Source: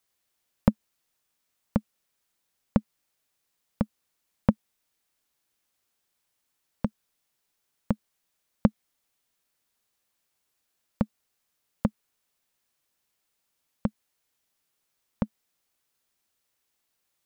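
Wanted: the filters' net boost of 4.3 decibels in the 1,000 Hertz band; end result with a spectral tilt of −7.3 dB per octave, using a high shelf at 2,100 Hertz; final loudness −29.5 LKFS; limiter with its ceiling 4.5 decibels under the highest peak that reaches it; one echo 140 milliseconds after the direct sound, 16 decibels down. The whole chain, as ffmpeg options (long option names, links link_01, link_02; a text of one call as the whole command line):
ffmpeg -i in.wav -af "equalizer=frequency=1000:width_type=o:gain=4.5,highshelf=frequency=2100:gain=3,alimiter=limit=-6.5dB:level=0:latency=1,aecho=1:1:140:0.158,volume=4dB" out.wav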